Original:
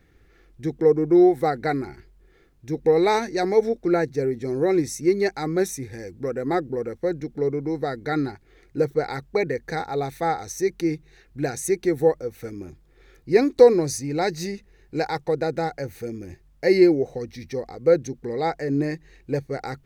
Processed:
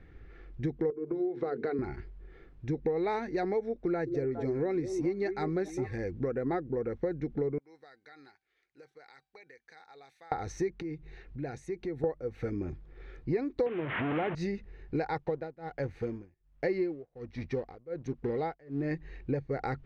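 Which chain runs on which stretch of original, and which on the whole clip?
0.90–1.79 s: cabinet simulation 210–5600 Hz, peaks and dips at 420 Hz +10 dB, 790 Hz -7 dB, 1.9 kHz -6 dB + compression 4:1, threshold -24 dBFS + hum notches 50/100/150/200/250/300/350/400/450 Hz
3.86–5.98 s: treble shelf 6.1 kHz +8 dB + repeats whose band climbs or falls 205 ms, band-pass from 330 Hz, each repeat 1.4 oct, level -8.5 dB
7.58–10.32 s: differentiator + compression, threshold -44 dBFS + feedback comb 780 Hz, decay 0.32 s, mix 50%
10.82–12.04 s: peaking EQ 1.6 kHz -4 dB 0.21 oct + band-stop 1.2 kHz, Q 16 + compression 2:1, threshold -47 dBFS
13.66–14.35 s: one-bit delta coder 16 kbps, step -20.5 dBFS + high-pass 120 Hz
15.18–18.91 s: companding laws mixed up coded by A + tremolo 1.3 Hz, depth 97%
whole clip: low-pass 2.7 kHz 12 dB/octave; bass shelf 87 Hz +6.5 dB; compression 6:1, threshold -31 dBFS; trim +2 dB

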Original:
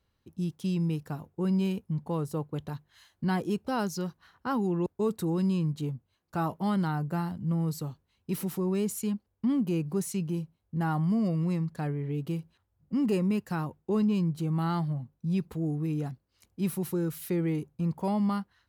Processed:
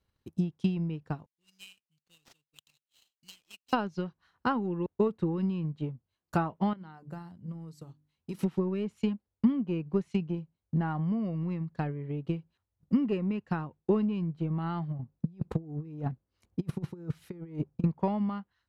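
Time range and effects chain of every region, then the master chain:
1.26–3.73 s: elliptic high-pass 2.6 kHz + treble shelf 3.6 kHz -12 dB + sample-rate reducer 11 kHz, jitter 20%
6.73–8.39 s: hum notches 50/100/150/200/250/300/350 Hz + compression 1.5:1, threshold -54 dBFS
14.99–17.84 s: treble shelf 2.4 kHz -11 dB + compressor with a negative ratio -34 dBFS, ratio -0.5
whole clip: dynamic bell 2.9 kHz, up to +5 dB, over -55 dBFS, Q 1.8; low-pass that closes with the level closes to 2.4 kHz, closed at -27.5 dBFS; transient shaper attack +11 dB, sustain -5 dB; trim -4.5 dB

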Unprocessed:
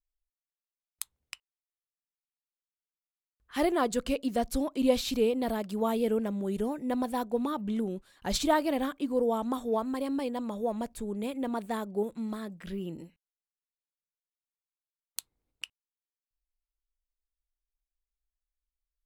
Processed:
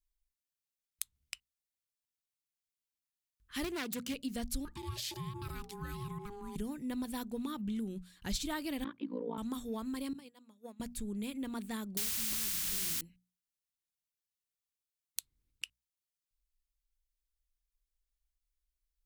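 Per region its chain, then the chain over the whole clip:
3.64–4.14 s: self-modulated delay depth 0.25 ms + high-pass 100 Hz 24 dB/octave
4.65–6.56 s: ring modulator 610 Hz + compression 5:1, threshold -33 dBFS
8.84–9.38 s: AM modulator 57 Hz, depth 95% + cabinet simulation 170–3400 Hz, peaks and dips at 280 Hz +4 dB, 460 Hz +6 dB, 930 Hz +9 dB, 3 kHz -3 dB
10.13–10.80 s: expander -23 dBFS + Bessel high-pass 240 Hz
11.97–13.01 s: hum notches 50/100/150/200 Hz + word length cut 6-bit, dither triangular + spectrum-flattening compressor 2:1
whole clip: amplifier tone stack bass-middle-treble 6-0-2; hum notches 60/120/180/240 Hz; compression 2.5:1, threshold -52 dBFS; trim +16.5 dB

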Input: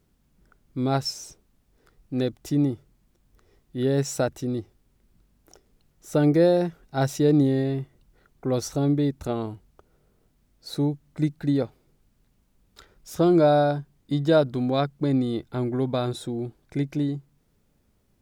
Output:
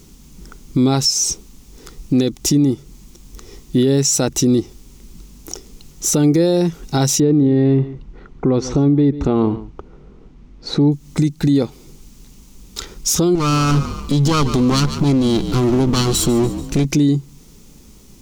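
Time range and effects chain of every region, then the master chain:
7.20–10.92 s: low-pass 1.9 kHz + delay 141 ms -20.5 dB
13.35–16.85 s: comb filter that takes the minimum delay 0.67 ms + compression 3:1, threshold -26 dBFS + frequency-shifting echo 144 ms, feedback 44%, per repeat -44 Hz, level -15 dB
whole clip: fifteen-band graphic EQ 100 Hz -9 dB, 630 Hz -11 dB, 1.6 kHz -9 dB, 6.3 kHz +8 dB; compression 4:1, threshold -35 dBFS; loudness maximiser +30.5 dB; trim -6.5 dB

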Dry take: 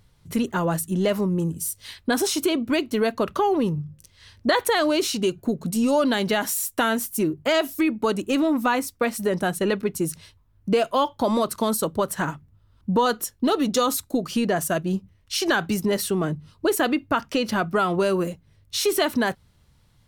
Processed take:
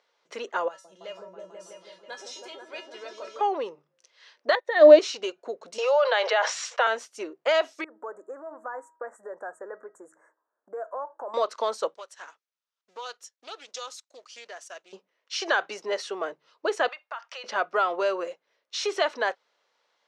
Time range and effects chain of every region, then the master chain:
0.68–3.41 s: treble shelf 3.7 kHz +6.5 dB + feedback comb 190 Hz, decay 0.24 s, harmonics odd, mix 90% + delay with an opening low-pass 163 ms, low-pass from 400 Hz, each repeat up 1 oct, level 0 dB
4.55–4.99 s: treble shelf 8.1 kHz -4 dB + small resonant body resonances 320/570/1800/3700 Hz, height 18 dB, ringing for 35 ms + upward expansion 2.5:1, over -27 dBFS
5.78–6.87 s: steep high-pass 450 Hz 72 dB/octave + distance through air 120 m + level flattener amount 70%
7.84–11.34 s: compression 3:1, threshold -32 dBFS + Chebyshev band-stop 1.7–7.4 kHz, order 4 + de-hum 319.1 Hz, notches 6
11.94–14.93 s: companding laws mixed up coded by A + pre-emphasis filter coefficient 0.9 + loudspeaker Doppler distortion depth 0.19 ms
16.88–17.44 s: high-pass 730 Hz 24 dB/octave + compression 3:1, threshold -34 dBFS
whole clip: elliptic band-pass 490–6300 Hz, stop band 60 dB; treble shelf 3.6 kHz -7.5 dB

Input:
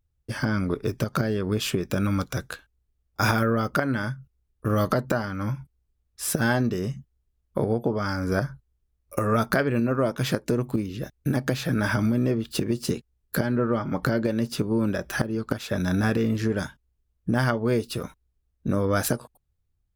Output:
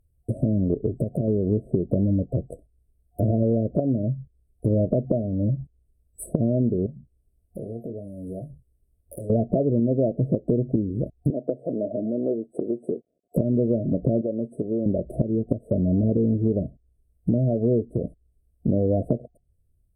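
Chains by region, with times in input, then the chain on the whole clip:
0.86–1.28 s: treble shelf 10 kHz +11.5 dB + compression 2.5:1, threshold -26 dBFS
6.86–9.30 s: compression 2.5:1, threshold -47 dBFS + doubling 26 ms -7 dB
11.30–13.36 s: companded quantiser 6-bit + band-pass 430–2700 Hz
14.21–14.86 s: low-pass 1.9 kHz + tilt EQ +4.5 dB/octave
whole clip: low-pass that closes with the level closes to 1 kHz, closed at -23.5 dBFS; FFT band-reject 720–7900 Hz; compression 2:1, threshold -29 dBFS; trim +7.5 dB

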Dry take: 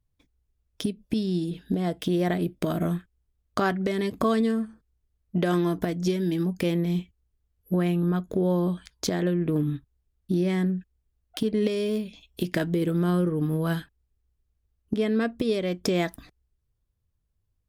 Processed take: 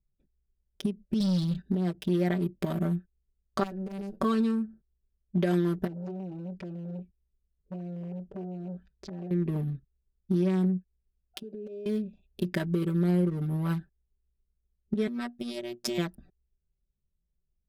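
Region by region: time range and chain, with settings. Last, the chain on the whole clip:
1.20–1.62 s: FFT filter 120 Hz 0 dB, 240 Hz -5 dB, 390 Hz -18 dB, 630 Hz -5 dB, 1.2 kHz +8 dB, 1.9 kHz +11 dB, 2.9 kHz -5 dB, 4.1 kHz +10 dB, 8 kHz -10 dB, 12 kHz -1 dB + waveshaping leveller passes 3
3.63–4.20 s: comb filter that takes the minimum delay 9.3 ms + tone controls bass -4 dB, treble +11 dB + compression 8:1, threshold -30 dBFS
5.87–9.31 s: distance through air 120 m + compression 5:1, threshold -27 dBFS + transformer saturation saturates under 1.3 kHz
11.39–11.86 s: high-pass 380 Hz + compression 12:1, threshold -32 dBFS + band-stop 1.9 kHz, Q 5
15.07–15.98 s: tilt EQ +2 dB/octave + robot voice 120 Hz
whole clip: local Wiener filter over 41 samples; comb 5.2 ms, depth 83%; endings held to a fixed fall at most 550 dB/s; trim -5.5 dB

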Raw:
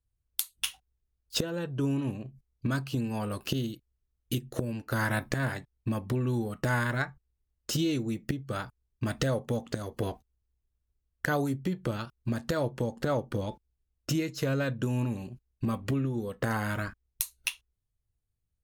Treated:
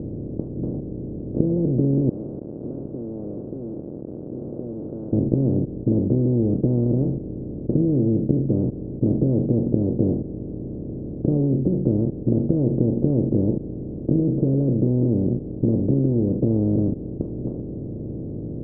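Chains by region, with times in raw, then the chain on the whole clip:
2.09–5.13 s: jump at every zero crossing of -37.5 dBFS + Bessel high-pass 2.8 kHz, order 4 + level flattener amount 50%
whole clip: spectral levelling over time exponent 0.2; inverse Chebyshev low-pass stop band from 1.8 kHz, stop band 70 dB; trim +5 dB

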